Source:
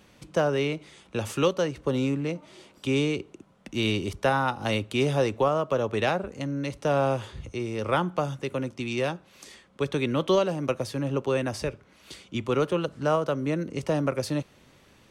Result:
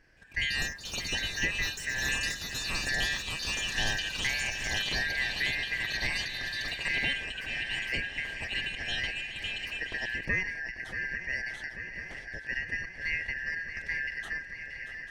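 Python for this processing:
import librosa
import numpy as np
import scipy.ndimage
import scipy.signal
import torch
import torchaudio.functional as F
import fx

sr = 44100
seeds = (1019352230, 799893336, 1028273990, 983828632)

y = fx.band_shuffle(x, sr, order='3142')
y = fx.tilt_eq(y, sr, slope=-3.5)
y = fx.echo_swing(y, sr, ms=842, ratio=3, feedback_pct=72, wet_db=-11.5)
y = fx.echo_pitch(y, sr, ms=170, semitones=7, count=3, db_per_echo=-3.0)
y = fx.end_taper(y, sr, db_per_s=130.0)
y = y * 10.0 ** (-5.5 / 20.0)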